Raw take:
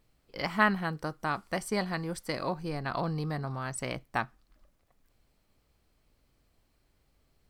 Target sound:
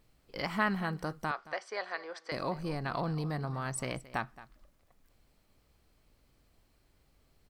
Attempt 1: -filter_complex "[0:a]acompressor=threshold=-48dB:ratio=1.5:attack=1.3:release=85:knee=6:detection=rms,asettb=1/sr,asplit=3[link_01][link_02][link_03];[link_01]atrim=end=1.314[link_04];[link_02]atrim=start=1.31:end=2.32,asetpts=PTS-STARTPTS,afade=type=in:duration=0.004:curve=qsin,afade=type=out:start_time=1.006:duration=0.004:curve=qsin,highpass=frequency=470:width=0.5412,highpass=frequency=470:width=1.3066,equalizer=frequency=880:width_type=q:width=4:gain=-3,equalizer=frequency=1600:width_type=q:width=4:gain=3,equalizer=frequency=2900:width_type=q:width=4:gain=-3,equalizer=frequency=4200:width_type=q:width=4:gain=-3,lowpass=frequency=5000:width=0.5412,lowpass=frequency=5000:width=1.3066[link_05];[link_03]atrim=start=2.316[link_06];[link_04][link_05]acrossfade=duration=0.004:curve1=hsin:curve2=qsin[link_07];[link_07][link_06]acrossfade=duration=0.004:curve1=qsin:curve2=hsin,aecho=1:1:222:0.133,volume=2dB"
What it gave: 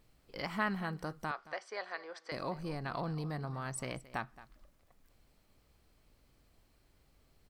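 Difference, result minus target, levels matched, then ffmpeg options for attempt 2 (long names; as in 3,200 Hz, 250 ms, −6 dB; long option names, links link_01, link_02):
downward compressor: peak gain reduction +4 dB
-filter_complex "[0:a]acompressor=threshold=-36.5dB:ratio=1.5:attack=1.3:release=85:knee=6:detection=rms,asettb=1/sr,asplit=3[link_01][link_02][link_03];[link_01]atrim=end=1.314[link_04];[link_02]atrim=start=1.31:end=2.32,asetpts=PTS-STARTPTS,afade=type=in:duration=0.004:curve=qsin,afade=type=out:start_time=1.006:duration=0.004:curve=qsin,highpass=frequency=470:width=0.5412,highpass=frequency=470:width=1.3066,equalizer=frequency=880:width_type=q:width=4:gain=-3,equalizer=frequency=1600:width_type=q:width=4:gain=3,equalizer=frequency=2900:width_type=q:width=4:gain=-3,equalizer=frequency=4200:width_type=q:width=4:gain=-3,lowpass=frequency=5000:width=0.5412,lowpass=frequency=5000:width=1.3066[link_05];[link_03]atrim=start=2.316[link_06];[link_04][link_05]acrossfade=duration=0.004:curve1=hsin:curve2=qsin[link_07];[link_07][link_06]acrossfade=duration=0.004:curve1=qsin:curve2=hsin,aecho=1:1:222:0.133,volume=2dB"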